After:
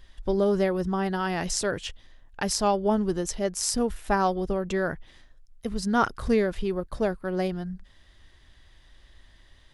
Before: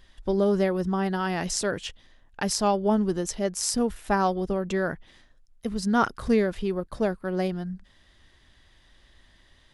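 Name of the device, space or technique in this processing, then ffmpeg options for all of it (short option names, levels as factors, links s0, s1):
low shelf boost with a cut just above: -af "lowshelf=f=89:g=6,equalizer=f=210:t=o:w=0.71:g=-3"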